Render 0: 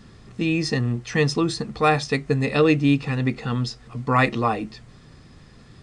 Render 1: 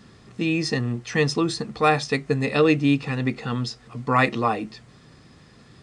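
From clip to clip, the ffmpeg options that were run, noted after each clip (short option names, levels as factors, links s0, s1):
-af "highpass=f=130:p=1"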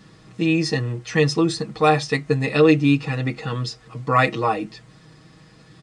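-af "aecho=1:1:6.3:0.65"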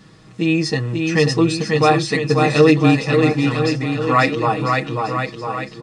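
-af "aecho=1:1:540|999|1389|1721|2003:0.631|0.398|0.251|0.158|0.1,volume=1.26"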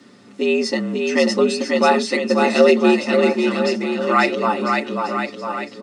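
-af "afreqshift=81,volume=0.891"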